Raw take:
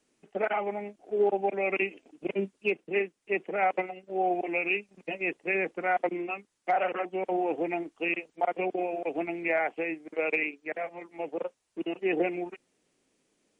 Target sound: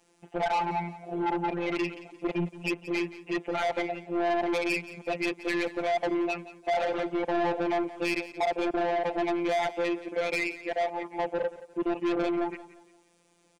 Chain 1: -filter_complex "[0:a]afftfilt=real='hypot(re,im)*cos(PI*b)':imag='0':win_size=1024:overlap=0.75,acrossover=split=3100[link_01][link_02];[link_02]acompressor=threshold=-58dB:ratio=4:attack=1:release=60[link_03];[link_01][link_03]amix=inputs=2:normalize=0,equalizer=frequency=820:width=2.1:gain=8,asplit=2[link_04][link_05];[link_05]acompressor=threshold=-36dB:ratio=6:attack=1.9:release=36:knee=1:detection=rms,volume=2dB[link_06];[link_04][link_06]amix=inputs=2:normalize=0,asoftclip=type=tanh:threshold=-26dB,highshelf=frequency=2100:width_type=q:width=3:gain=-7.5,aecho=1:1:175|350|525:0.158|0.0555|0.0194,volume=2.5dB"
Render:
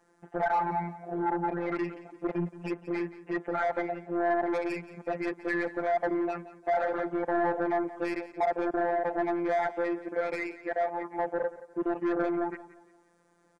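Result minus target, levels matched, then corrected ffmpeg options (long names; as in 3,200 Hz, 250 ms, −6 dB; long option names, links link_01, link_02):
4,000 Hz band −13.0 dB; downward compressor: peak gain reduction +8.5 dB
-filter_complex "[0:a]afftfilt=real='hypot(re,im)*cos(PI*b)':imag='0':win_size=1024:overlap=0.75,acrossover=split=3100[link_01][link_02];[link_02]acompressor=threshold=-58dB:ratio=4:attack=1:release=60[link_03];[link_01][link_03]amix=inputs=2:normalize=0,equalizer=frequency=820:width=2.1:gain=8,asplit=2[link_04][link_05];[link_05]acompressor=threshold=-25.5dB:ratio=6:attack=1.9:release=36:knee=1:detection=rms,volume=2dB[link_06];[link_04][link_06]amix=inputs=2:normalize=0,asoftclip=type=tanh:threshold=-26dB,aecho=1:1:175|350|525:0.158|0.0555|0.0194,volume=2.5dB"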